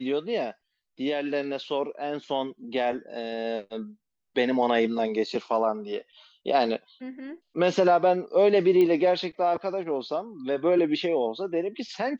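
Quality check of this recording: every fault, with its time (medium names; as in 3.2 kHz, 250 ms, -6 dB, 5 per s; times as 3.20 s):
8.81 s: pop -15 dBFS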